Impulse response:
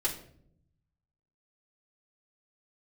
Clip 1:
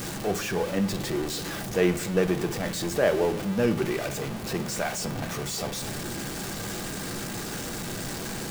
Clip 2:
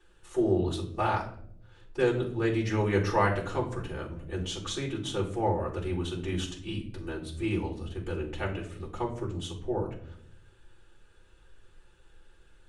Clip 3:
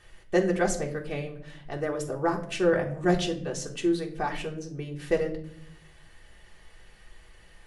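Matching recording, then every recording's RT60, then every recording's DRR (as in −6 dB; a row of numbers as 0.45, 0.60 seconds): 2; non-exponential decay, 0.65 s, 0.65 s; 6.5, −8.5, −0.5 decibels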